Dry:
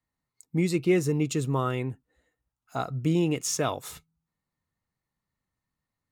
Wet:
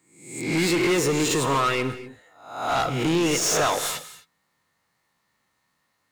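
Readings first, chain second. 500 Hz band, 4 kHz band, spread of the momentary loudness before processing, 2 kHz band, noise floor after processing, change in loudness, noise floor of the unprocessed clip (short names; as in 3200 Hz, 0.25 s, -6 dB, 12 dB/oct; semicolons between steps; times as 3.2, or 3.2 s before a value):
+4.5 dB, +11.5 dB, 13 LU, +11.0 dB, -73 dBFS, +4.5 dB, under -85 dBFS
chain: spectral swells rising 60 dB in 0.60 s; overdrive pedal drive 26 dB, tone 6400 Hz, clips at -11 dBFS; non-linear reverb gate 0.28 s flat, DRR 11.5 dB; gain -3.5 dB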